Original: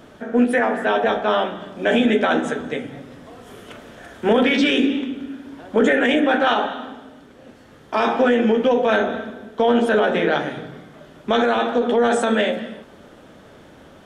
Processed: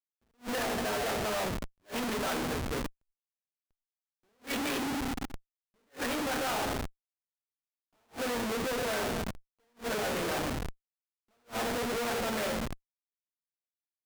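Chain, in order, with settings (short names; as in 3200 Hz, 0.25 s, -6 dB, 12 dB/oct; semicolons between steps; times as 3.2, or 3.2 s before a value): CVSD 32 kbps; Schmitt trigger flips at -26.5 dBFS; low shelf 400 Hz -4.5 dB; attack slew limiter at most 330 dB/s; gain -9 dB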